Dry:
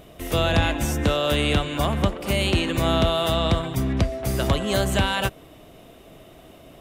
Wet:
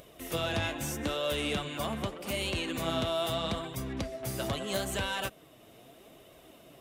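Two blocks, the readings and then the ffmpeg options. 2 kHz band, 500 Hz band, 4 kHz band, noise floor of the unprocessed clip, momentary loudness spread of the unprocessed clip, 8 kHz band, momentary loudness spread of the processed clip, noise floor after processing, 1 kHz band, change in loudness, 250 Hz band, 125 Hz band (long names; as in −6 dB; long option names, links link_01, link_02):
−9.0 dB, −9.5 dB, −8.5 dB, −48 dBFS, 4 LU, −6.0 dB, 6 LU, −56 dBFS, −10.0 dB, −10.5 dB, −11.5 dB, −14.5 dB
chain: -af "highpass=frequency=120:poles=1,highshelf=frequency=4000:gain=4.5,acompressor=mode=upward:threshold=-40dB:ratio=2.5,asoftclip=type=tanh:threshold=-13.5dB,flanger=delay=1.8:depth=7.3:regen=44:speed=0.79:shape=sinusoidal,volume=-5dB"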